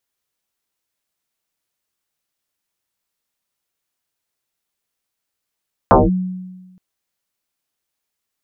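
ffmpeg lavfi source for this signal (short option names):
-f lavfi -i "aevalsrc='0.596*pow(10,-3*t/1.27)*sin(2*PI*184*t+7.8*clip(1-t/0.19,0,1)*sin(2*PI*0.78*184*t))':d=0.87:s=44100"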